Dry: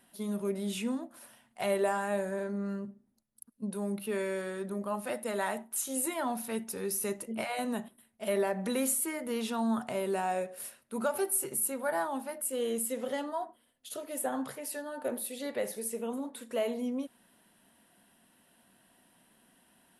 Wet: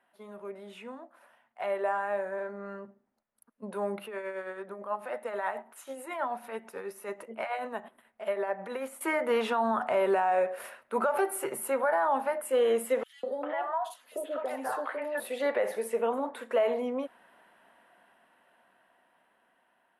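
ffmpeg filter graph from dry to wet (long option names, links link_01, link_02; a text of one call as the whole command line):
ffmpeg -i in.wav -filter_complex "[0:a]asettb=1/sr,asplit=3[link_01][link_02][link_03];[link_01]atrim=end=4.064[link_04];[link_02]atrim=start=4.06:end=9.01,asetpts=PTS-STARTPTS,afade=type=in:duration=0.004:curve=qsin,afade=type=out:start_time=4.946:duration=0.004:curve=qsin,acompressor=threshold=-53dB:ratio=1.5:attack=3.2:release=140:knee=1:detection=peak,tremolo=f=9.2:d=0.53[link_05];[link_03]atrim=start=9.006[link_06];[link_04][link_05]acrossfade=duration=0.004:curve1=hsin:curve2=qsin[link_07];[link_07][link_06]acrossfade=duration=0.004:curve1=qsin:curve2=hsin,asettb=1/sr,asplit=3[link_08][link_09][link_10];[link_08]atrim=end=13.034[link_11];[link_09]atrim=start=13.03:end=15.2,asetpts=PTS-STARTPTS,afade=type=in:duration=0.004:curve=qsin,afade=type=out:start_time=2.166:duration=0.004:curve=qsin,highpass=190,acompressor=threshold=-36dB:ratio=5:attack=3.2:release=140:knee=1:detection=peak,acrossover=split=660|3100[link_12][link_13][link_14];[link_12]adelay=200[link_15];[link_13]adelay=400[link_16];[link_15][link_16][link_14]amix=inputs=3:normalize=0,atrim=end_sample=95697[link_17];[link_10]atrim=start=15.196[link_18];[link_11][link_17]acrossfade=duration=0.004:curve1=hsin:curve2=qsin[link_19];[link_19][link_18]acrossfade=duration=0.004:curve1=qsin:curve2=hsin,acrossover=split=470 2300:gain=0.112 1 0.0794[link_20][link_21][link_22];[link_20][link_21][link_22]amix=inputs=3:normalize=0,dynaudnorm=framelen=790:gausssize=9:maxgain=14.5dB,alimiter=limit=-18dB:level=0:latency=1:release=80" out.wav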